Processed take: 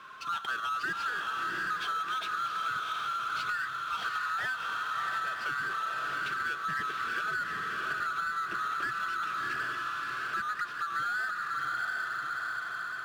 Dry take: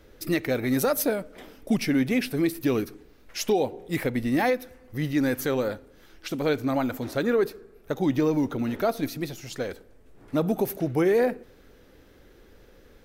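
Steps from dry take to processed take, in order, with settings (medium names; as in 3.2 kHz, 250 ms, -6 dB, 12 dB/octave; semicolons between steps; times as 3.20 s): split-band scrambler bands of 1 kHz; cabinet simulation 120–4200 Hz, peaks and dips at 130 Hz +5 dB, 260 Hz -6 dB, 540 Hz -9 dB, 820 Hz -6 dB, 2.6 kHz +7 dB; on a send: echo that smears into a reverb 709 ms, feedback 40%, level -3 dB; on the sum: power-law waveshaper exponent 0.7; compression, threshold -23 dBFS, peak gain reduction 7.5 dB; trim -7.5 dB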